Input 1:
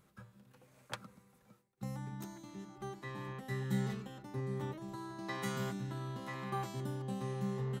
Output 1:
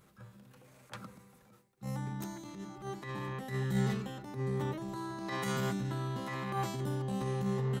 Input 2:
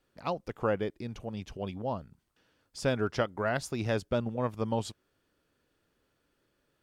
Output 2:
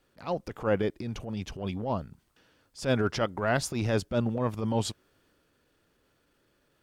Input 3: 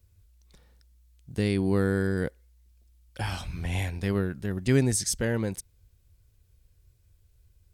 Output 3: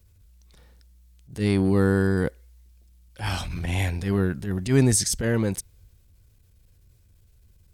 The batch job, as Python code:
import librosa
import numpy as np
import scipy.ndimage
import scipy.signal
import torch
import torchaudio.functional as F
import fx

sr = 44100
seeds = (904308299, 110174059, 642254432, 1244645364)

y = fx.transient(x, sr, attack_db=-11, sustain_db=2)
y = y * 10.0 ** (5.5 / 20.0)